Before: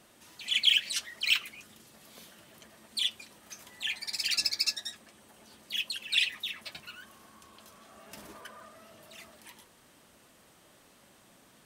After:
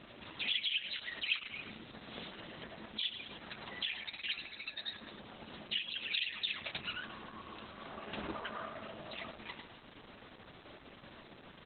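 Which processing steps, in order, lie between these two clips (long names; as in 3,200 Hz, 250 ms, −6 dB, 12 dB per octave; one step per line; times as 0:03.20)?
in parallel at +1 dB: brickwall limiter −21.5 dBFS, peak gain reduction 11 dB
on the sum: echo with shifted repeats 102 ms, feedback 39%, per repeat −46 Hz, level −15 dB
downward compressor 4 to 1, threshold −35 dBFS, peak gain reduction 16.5 dB
level +3 dB
Opus 8 kbit/s 48,000 Hz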